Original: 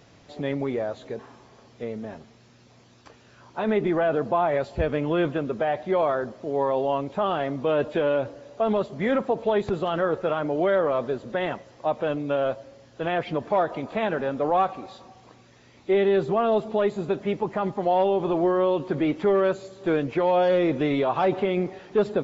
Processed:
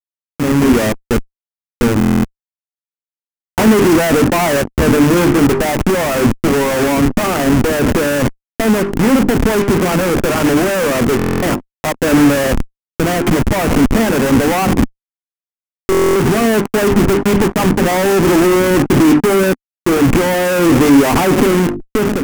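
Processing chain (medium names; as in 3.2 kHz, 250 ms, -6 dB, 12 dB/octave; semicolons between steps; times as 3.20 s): send-on-delta sampling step -27.5 dBFS; compression 10:1, threshold -36 dBFS, peak gain reduction 19 dB; hum notches 50/100/150/200/250/300/350/400 Hz; gate -48 dBFS, range -14 dB; fuzz box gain 56 dB, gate -55 dBFS; level rider; fifteen-band graphic EQ 250 Hz +8 dB, 630 Hz -5 dB, 4 kHz -6 dB; buffer glitch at 1.99/11.17/15.90 s, samples 1024, times 10; trim -5 dB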